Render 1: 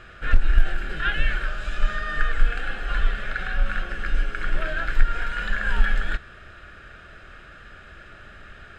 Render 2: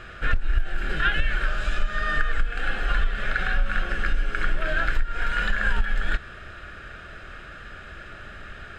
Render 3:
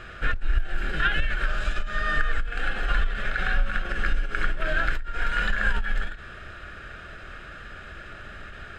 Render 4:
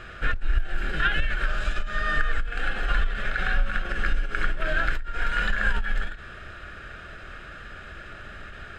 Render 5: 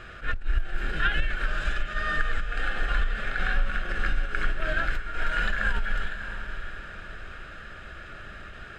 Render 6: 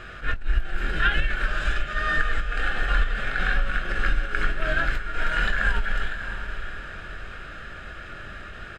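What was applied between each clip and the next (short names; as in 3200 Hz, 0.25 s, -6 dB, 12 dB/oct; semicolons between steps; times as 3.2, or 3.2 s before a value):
compressor 16:1, threshold -20 dBFS, peak gain reduction 14 dB; gain +4 dB
ending taper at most 120 dB/s
nothing audible
diffused feedback echo 0.619 s, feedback 40%, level -9 dB; attack slew limiter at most 270 dB/s; gain -2 dB
doubler 22 ms -10 dB; gain +3 dB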